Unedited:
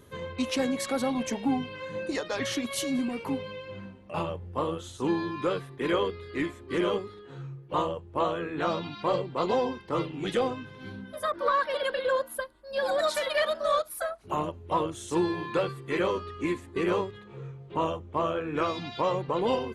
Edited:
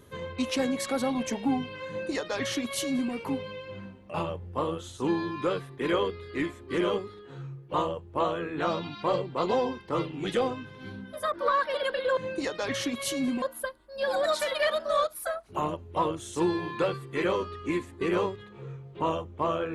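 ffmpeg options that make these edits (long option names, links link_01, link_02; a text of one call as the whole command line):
ffmpeg -i in.wav -filter_complex "[0:a]asplit=3[link_01][link_02][link_03];[link_01]atrim=end=12.172[link_04];[link_02]atrim=start=1.878:end=3.132[link_05];[link_03]atrim=start=12.168[link_06];[link_04][link_05]acrossfade=duration=0.004:curve1=hsin:curve2=hsin[link_07];[link_07][link_06]acrossfade=duration=0.004:curve1=hsin:curve2=hsin" out.wav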